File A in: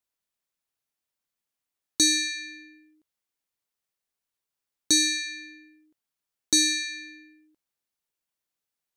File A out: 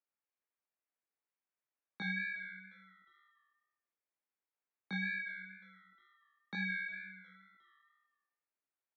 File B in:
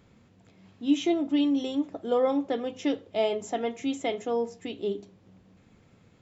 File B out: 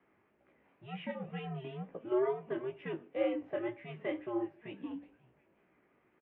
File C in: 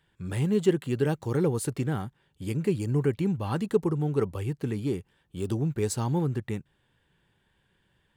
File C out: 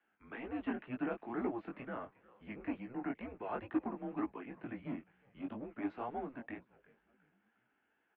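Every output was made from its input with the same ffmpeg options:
-filter_complex "[0:a]acrossover=split=530|1400[link_01][link_02][link_03];[link_01]asoftclip=type=tanh:threshold=-28dB[link_04];[link_04][link_02][link_03]amix=inputs=3:normalize=0,asplit=4[link_05][link_06][link_07][link_08];[link_06]adelay=358,afreqshift=-150,volume=-21dB[link_09];[link_07]adelay=716,afreqshift=-300,volume=-27.7dB[link_10];[link_08]adelay=1074,afreqshift=-450,volume=-34.5dB[link_11];[link_05][link_09][link_10][link_11]amix=inputs=4:normalize=0,highpass=frequency=360:width_type=q:width=0.5412,highpass=frequency=360:width_type=q:width=1.307,lowpass=frequency=2600:width_type=q:width=0.5176,lowpass=frequency=2600:width_type=q:width=0.7071,lowpass=frequency=2600:width_type=q:width=1.932,afreqshift=-120,flanger=delay=15.5:depth=6.1:speed=2.1,volume=-2dB"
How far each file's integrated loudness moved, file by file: −16.5, −9.5, −13.5 LU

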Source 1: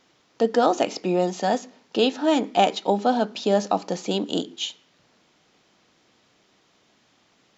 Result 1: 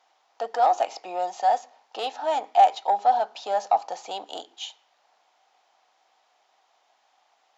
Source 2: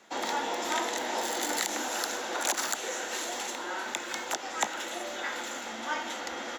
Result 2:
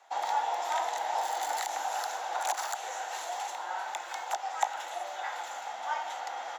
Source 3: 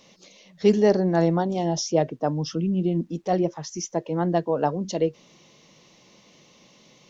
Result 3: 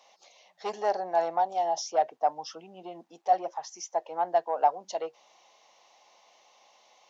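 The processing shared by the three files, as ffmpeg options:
-af "asoftclip=type=tanh:threshold=-11.5dB,highpass=frequency=770:width_type=q:width=4.9,volume=-7dB"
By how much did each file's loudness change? −1.0, −2.0, −5.5 LU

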